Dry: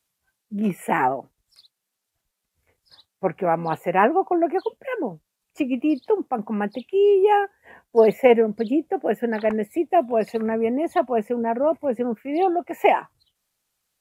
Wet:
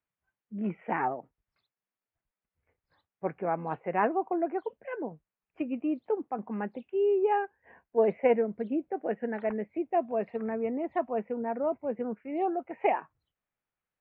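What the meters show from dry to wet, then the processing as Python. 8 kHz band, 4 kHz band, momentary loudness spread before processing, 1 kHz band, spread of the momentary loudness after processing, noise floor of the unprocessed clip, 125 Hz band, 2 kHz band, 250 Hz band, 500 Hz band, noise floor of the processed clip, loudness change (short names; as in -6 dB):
n/a, under -15 dB, 10 LU, -9.0 dB, 10 LU, -81 dBFS, -9.0 dB, -10.0 dB, -9.0 dB, -9.0 dB, under -85 dBFS, -9.0 dB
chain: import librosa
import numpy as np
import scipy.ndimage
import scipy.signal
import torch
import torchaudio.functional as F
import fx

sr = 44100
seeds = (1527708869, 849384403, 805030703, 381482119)

y = scipy.signal.sosfilt(scipy.signal.butter(4, 2400.0, 'lowpass', fs=sr, output='sos'), x)
y = F.gain(torch.from_numpy(y), -9.0).numpy()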